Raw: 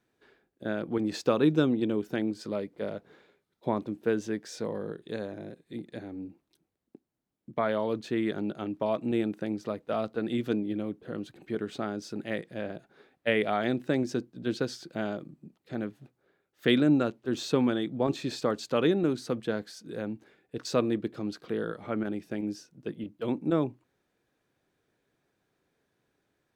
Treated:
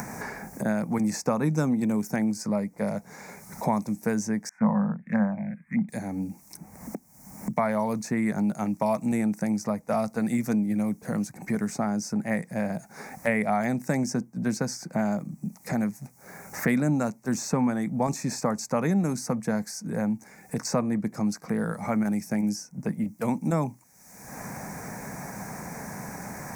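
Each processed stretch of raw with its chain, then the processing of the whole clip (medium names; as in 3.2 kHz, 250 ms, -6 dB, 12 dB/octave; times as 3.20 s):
4.49–5.89 s: FFT filter 100 Hz 0 dB, 220 Hz +12 dB, 390 Hz -10 dB, 550 Hz +5 dB, 1.3 kHz +14 dB, 2.2 kHz +10 dB, 4.3 kHz -29 dB + touch-sensitive phaser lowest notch 450 Hz, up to 2.7 kHz, full sweep at -25.5 dBFS + three bands expanded up and down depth 100%
whole clip: upward compressor, threshold -40 dBFS; FFT filter 120 Hz 0 dB, 200 Hz +7 dB, 350 Hz -12 dB, 870 Hz +6 dB, 1.4 kHz -4 dB, 2.2 kHz +2 dB, 3.2 kHz -25 dB, 5.7 kHz +12 dB; three bands compressed up and down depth 70%; trim +4 dB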